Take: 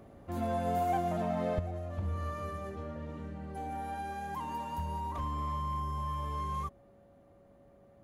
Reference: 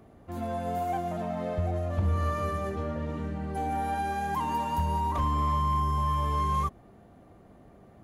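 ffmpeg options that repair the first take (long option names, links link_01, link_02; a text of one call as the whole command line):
ffmpeg -i in.wav -af "bandreject=frequency=560:width=30,asetnsamples=nb_out_samples=441:pad=0,asendcmd='1.59 volume volume 8.5dB',volume=0dB" out.wav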